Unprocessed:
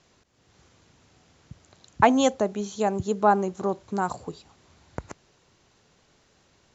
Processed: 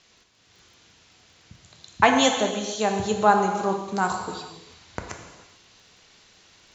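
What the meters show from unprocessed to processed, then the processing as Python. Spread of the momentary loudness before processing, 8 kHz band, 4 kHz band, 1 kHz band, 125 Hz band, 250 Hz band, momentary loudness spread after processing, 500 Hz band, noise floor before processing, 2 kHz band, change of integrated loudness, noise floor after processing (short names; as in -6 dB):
21 LU, n/a, +10.0 dB, +2.5 dB, +0.5 dB, 0.0 dB, 21 LU, +0.5 dB, -64 dBFS, +6.5 dB, +2.0 dB, -59 dBFS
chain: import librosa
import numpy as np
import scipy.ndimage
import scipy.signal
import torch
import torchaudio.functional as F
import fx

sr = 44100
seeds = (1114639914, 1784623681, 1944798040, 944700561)

p1 = fx.peak_eq(x, sr, hz=3600.0, db=11.5, octaves=2.7)
p2 = fx.rev_gated(p1, sr, seeds[0], gate_ms=470, shape='falling', drr_db=3.0)
p3 = fx.rider(p2, sr, range_db=3, speed_s=2.0)
p4 = p2 + (p3 * librosa.db_to_amplitude(0.0))
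p5 = fx.dmg_crackle(p4, sr, seeds[1], per_s=17.0, level_db=-44.0)
y = p5 * librosa.db_to_amplitude(-8.5)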